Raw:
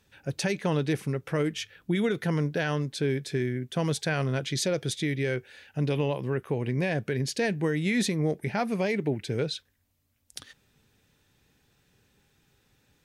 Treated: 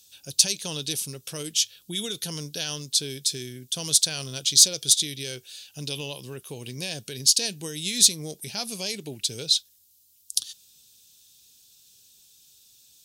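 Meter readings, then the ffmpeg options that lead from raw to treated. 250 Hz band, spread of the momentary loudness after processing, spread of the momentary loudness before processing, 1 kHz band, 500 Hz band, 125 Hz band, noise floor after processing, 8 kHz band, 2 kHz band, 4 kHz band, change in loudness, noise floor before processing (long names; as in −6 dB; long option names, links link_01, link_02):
−9.5 dB, 16 LU, 5 LU, −9.5 dB, −9.5 dB, −9.5 dB, −60 dBFS, +18.0 dB, −6.5 dB, +13.5 dB, +5.0 dB, −70 dBFS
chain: -af "aexciter=amount=13.2:drive=8:freq=3100,volume=-9.5dB"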